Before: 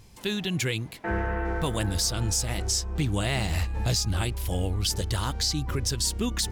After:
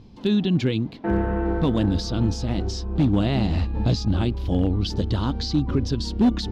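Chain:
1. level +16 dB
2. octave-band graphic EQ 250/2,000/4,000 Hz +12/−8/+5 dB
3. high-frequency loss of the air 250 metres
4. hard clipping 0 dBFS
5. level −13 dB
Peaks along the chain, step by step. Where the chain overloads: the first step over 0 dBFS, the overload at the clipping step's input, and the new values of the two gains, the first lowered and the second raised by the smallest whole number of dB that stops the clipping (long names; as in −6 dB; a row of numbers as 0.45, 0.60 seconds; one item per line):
−0.5, +6.0, +5.5, 0.0, −13.0 dBFS
step 2, 5.5 dB
step 1 +10 dB, step 5 −7 dB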